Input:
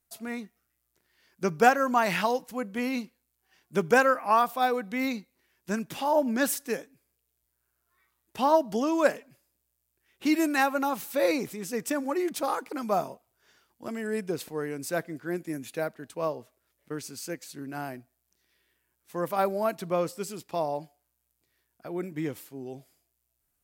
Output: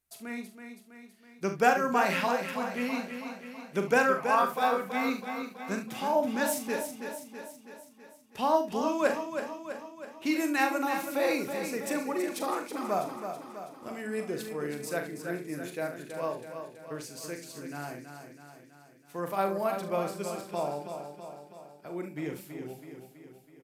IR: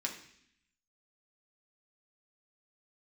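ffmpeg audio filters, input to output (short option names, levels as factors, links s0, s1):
-filter_complex "[0:a]equalizer=f=2400:w=2.8:g=3,asplit=2[s0][s1];[s1]aecho=0:1:41|71:0.422|0.251[s2];[s0][s2]amix=inputs=2:normalize=0,aresample=32000,aresample=44100,bandreject=f=55.87:t=h:w=4,bandreject=f=111.74:t=h:w=4,bandreject=f=167.61:t=h:w=4,bandreject=f=223.48:t=h:w=4,bandreject=f=279.35:t=h:w=4,bandreject=f=335.22:t=h:w=4,asplit=2[s3][s4];[s4]aecho=0:1:326|652|978|1304|1630|1956|2282:0.398|0.227|0.129|0.0737|0.042|0.024|0.0137[s5];[s3][s5]amix=inputs=2:normalize=0,volume=0.631"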